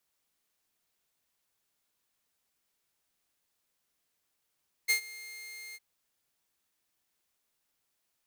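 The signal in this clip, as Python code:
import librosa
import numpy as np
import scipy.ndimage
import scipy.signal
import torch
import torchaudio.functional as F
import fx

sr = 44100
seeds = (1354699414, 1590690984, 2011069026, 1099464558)

y = fx.adsr_tone(sr, wave='saw', hz=2120.0, attack_ms=23.0, decay_ms=100.0, sustain_db=-21.0, held_s=0.87, release_ms=39.0, level_db=-19.5)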